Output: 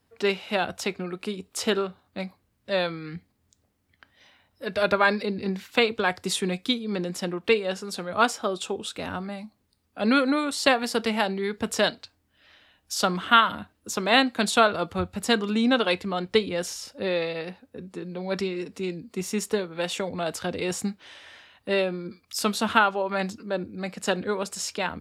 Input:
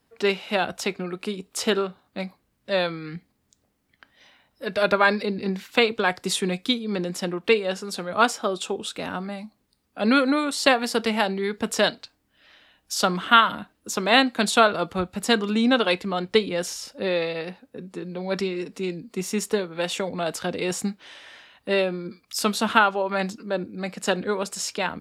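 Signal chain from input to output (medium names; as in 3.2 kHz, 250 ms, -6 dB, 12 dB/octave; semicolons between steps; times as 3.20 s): peaking EQ 90 Hz +11.5 dB 0.39 oct; trim -2 dB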